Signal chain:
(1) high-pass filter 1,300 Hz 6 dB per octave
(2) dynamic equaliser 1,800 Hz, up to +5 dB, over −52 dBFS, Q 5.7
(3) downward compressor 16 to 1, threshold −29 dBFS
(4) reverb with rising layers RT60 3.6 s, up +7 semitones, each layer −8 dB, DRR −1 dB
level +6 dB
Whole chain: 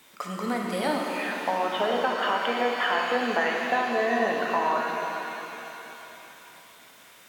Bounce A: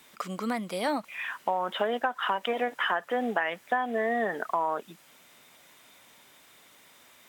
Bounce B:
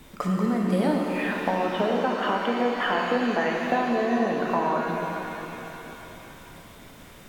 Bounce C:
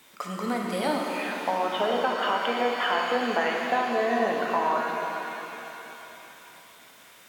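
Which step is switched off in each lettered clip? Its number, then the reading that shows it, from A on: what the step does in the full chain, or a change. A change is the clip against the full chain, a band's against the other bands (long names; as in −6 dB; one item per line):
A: 4, change in momentary loudness spread −10 LU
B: 1, 125 Hz band +12.0 dB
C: 2, 2 kHz band −2.0 dB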